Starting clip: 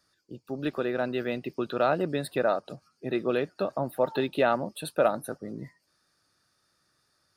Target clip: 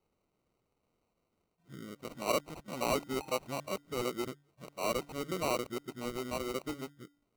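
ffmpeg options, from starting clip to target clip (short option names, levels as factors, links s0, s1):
-af "areverse,bandreject=f=144.3:t=h:w=4,bandreject=f=288.6:t=h:w=4,acrusher=samples=26:mix=1:aa=0.000001,volume=0.398"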